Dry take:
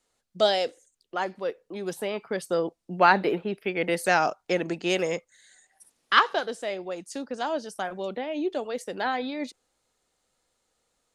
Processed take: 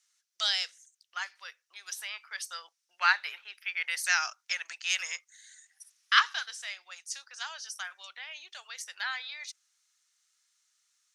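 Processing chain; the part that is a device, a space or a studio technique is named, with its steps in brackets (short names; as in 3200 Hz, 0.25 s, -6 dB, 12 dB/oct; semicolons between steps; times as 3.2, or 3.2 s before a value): headphones lying on a table (HPF 1400 Hz 24 dB/oct; bell 5800 Hz +10 dB 0.39 oct)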